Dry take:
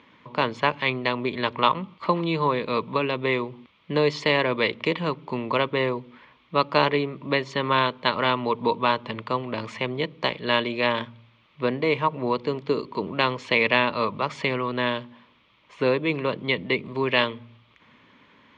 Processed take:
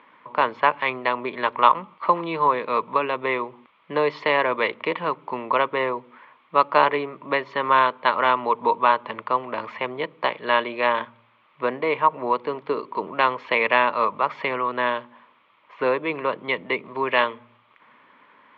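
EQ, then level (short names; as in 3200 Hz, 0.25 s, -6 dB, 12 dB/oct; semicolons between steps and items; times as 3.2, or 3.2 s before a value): band-pass 1100 Hz, Q 0.93; air absorption 140 m; +6.5 dB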